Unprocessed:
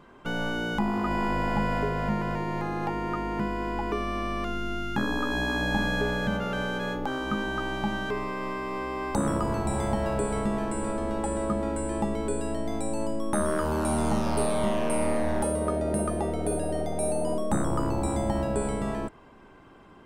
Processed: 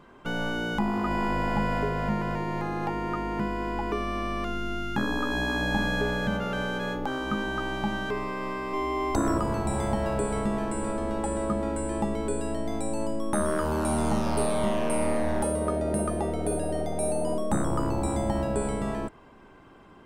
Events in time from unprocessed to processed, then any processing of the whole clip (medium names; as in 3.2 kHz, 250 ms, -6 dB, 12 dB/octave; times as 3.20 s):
8.73–9.38 s: comb 2.9 ms, depth 84%